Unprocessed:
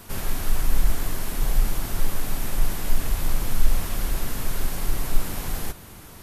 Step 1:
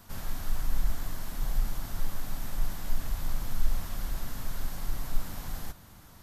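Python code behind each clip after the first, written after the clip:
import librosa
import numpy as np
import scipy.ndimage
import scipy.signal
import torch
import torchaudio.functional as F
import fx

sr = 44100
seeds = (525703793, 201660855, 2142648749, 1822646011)

y = fx.graphic_eq_15(x, sr, hz=(400, 2500, 10000), db=(-8, -5, -6))
y = y * librosa.db_to_amplitude(-7.5)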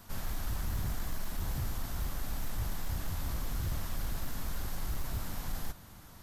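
y = 10.0 ** (-27.5 / 20.0) * (np.abs((x / 10.0 ** (-27.5 / 20.0) + 3.0) % 4.0 - 2.0) - 1.0)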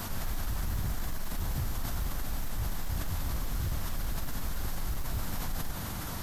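y = fx.env_flatten(x, sr, amount_pct=70)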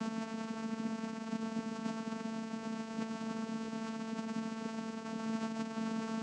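y = fx.vocoder(x, sr, bands=8, carrier='saw', carrier_hz=223.0)
y = y * librosa.db_to_amplitude(2.0)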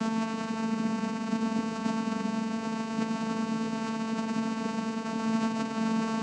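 y = fx.rev_spring(x, sr, rt60_s=3.8, pass_ms=(30, 40), chirp_ms=80, drr_db=4.0)
y = y * librosa.db_to_amplitude(8.0)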